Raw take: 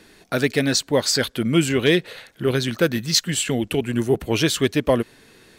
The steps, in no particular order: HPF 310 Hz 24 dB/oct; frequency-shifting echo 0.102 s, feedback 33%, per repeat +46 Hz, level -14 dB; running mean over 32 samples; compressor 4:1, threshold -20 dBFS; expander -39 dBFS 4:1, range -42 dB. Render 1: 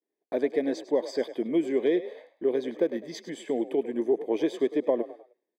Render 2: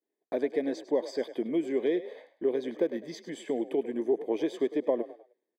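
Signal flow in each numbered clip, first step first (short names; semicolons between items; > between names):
HPF > expander > running mean > compressor > frequency-shifting echo; compressor > HPF > expander > frequency-shifting echo > running mean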